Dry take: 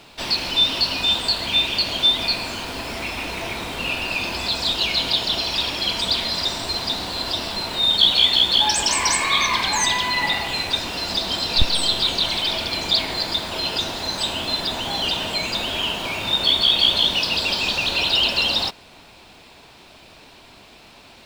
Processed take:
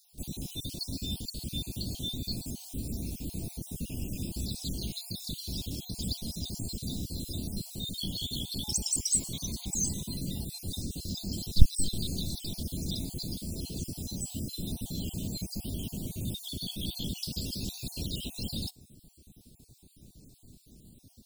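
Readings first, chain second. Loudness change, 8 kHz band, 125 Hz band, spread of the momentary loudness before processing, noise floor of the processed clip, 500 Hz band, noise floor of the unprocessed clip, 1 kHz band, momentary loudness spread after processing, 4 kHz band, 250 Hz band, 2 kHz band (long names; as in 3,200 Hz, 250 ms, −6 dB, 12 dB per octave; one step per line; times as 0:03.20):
−15.5 dB, −6.0 dB, +1.0 dB, 9 LU, −60 dBFS, −17.5 dB, −47 dBFS, −34.0 dB, 8 LU, −21.0 dB, −3.5 dB, −35.0 dB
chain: time-frequency cells dropped at random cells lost 39%
Chebyshev band-stop filter 180–10,000 Hz, order 2
level +3 dB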